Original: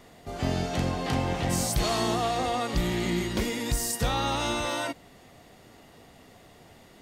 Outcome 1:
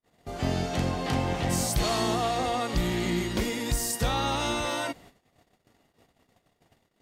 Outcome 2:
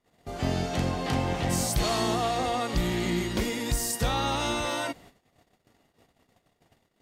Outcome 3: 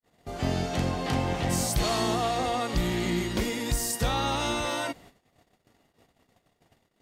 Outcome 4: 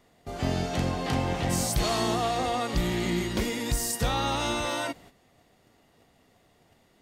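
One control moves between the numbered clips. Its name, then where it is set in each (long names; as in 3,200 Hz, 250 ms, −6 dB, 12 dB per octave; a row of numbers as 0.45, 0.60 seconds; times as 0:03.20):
noise gate, range: −42, −25, −55, −10 decibels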